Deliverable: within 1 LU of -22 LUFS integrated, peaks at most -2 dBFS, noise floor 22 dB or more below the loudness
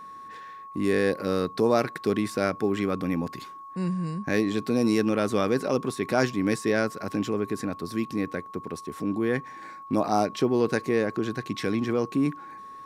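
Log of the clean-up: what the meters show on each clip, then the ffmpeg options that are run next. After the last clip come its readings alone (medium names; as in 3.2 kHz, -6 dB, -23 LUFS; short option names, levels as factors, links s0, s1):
steady tone 1.1 kHz; tone level -40 dBFS; loudness -27.0 LUFS; peak level -8.0 dBFS; loudness target -22.0 LUFS
-> -af "bandreject=f=1100:w=30"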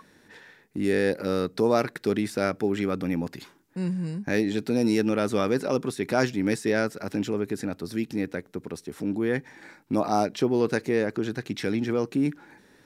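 steady tone not found; loudness -27.0 LUFS; peak level -8.0 dBFS; loudness target -22.0 LUFS
-> -af "volume=1.78"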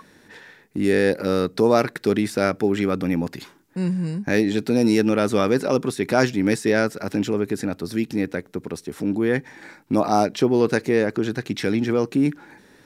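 loudness -22.0 LUFS; peak level -3.0 dBFS; noise floor -53 dBFS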